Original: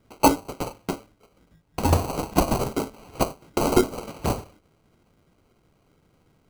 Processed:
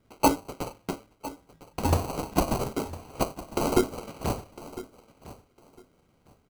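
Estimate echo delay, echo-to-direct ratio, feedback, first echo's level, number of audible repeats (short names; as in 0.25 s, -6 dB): 1.005 s, -16.5 dB, 20%, -16.5 dB, 2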